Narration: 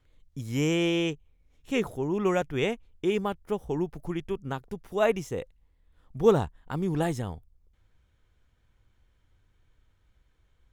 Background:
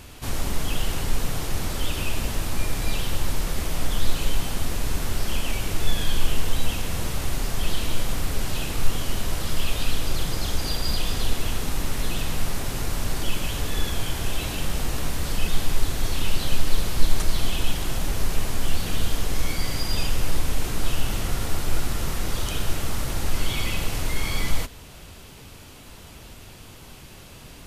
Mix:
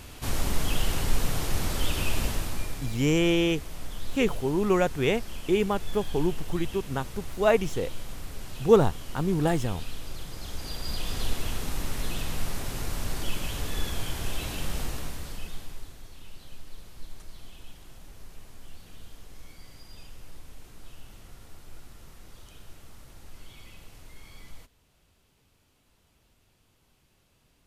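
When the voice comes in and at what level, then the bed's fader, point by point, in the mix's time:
2.45 s, +2.5 dB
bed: 0:02.25 −1 dB
0:02.98 −13 dB
0:10.30 −13 dB
0:11.22 −5 dB
0:14.81 −5 dB
0:16.08 −22.5 dB

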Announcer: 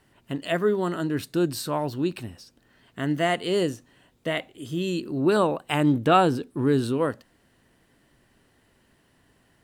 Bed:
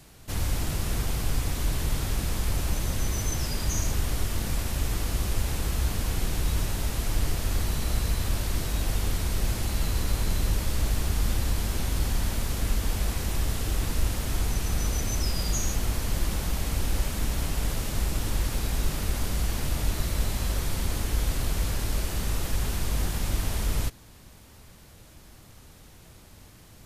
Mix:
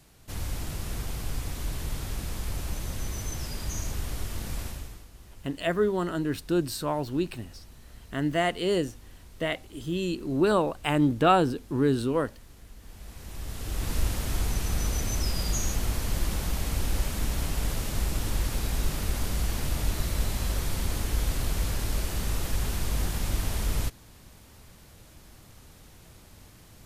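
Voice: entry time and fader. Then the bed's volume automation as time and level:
5.15 s, −2.0 dB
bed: 0:04.66 −5.5 dB
0:05.10 −22.5 dB
0:12.75 −22.5 dB
0:13.94 −1 dB

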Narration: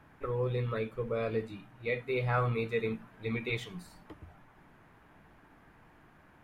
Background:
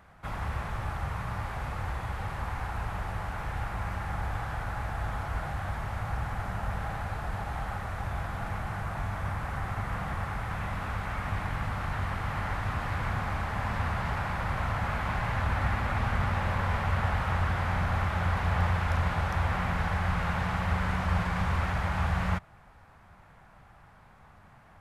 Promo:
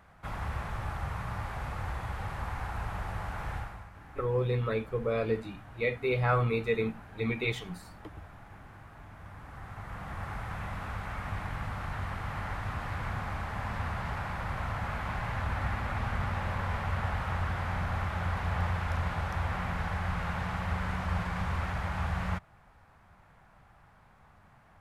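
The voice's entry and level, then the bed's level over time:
3.95 s, +3.0 dB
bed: 0:03.55 −2 dB
0:03.92 −17.5 dB
0:09.09 −17.5 dB
0:10.33 −4 dB

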